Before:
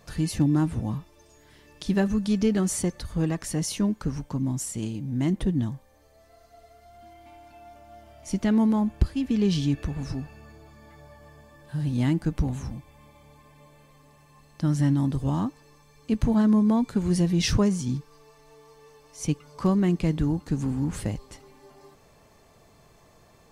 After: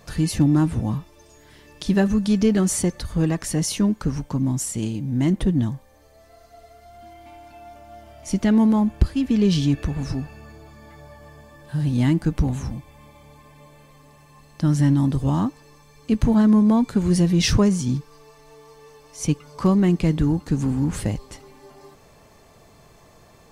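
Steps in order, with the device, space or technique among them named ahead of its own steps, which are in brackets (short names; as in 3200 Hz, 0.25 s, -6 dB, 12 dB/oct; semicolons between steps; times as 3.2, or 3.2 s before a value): parallel distortion (in parallel at -13.5 dB: hard clip -22.5 dBFS, distortion -9 dB); on the sum: gain +3.5 dB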